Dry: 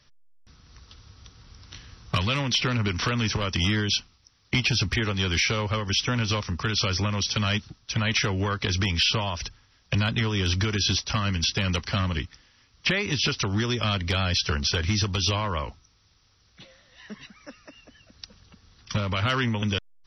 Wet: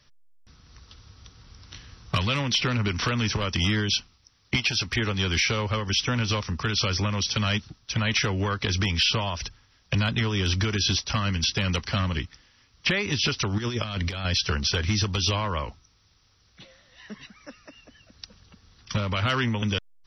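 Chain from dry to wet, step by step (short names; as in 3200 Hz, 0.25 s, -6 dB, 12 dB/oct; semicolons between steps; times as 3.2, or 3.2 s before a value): 4.56–4.96 low shelf 360 Hz -9.5 dB; 13.58–14.25 negative-ratio compressor -28 dBFS, ratio -0.5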